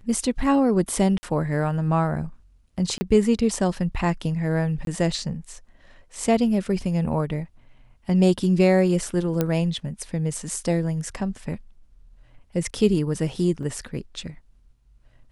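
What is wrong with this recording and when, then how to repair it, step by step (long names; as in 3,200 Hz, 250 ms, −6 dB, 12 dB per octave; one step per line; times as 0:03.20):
0:01.18–0:01.23: drop-out 50 ms
0:02.98–0:03.01: drop-out 30 ms
0:04.85–0:04.87: drop-out 22 ms
0:09.41: click −9 dBFS
0:13.63: drop-out 2.1 ms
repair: click removal
repair the gap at 0:01.18, 50 ms
repair the gap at 0:02.98, 30 ms
repair the gap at 0:04.85, 22 ms
repair the gap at 0:13.63, 2.1 ms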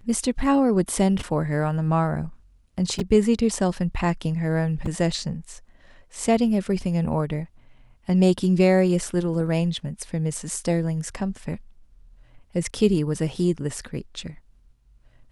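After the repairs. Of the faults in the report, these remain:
none of them is left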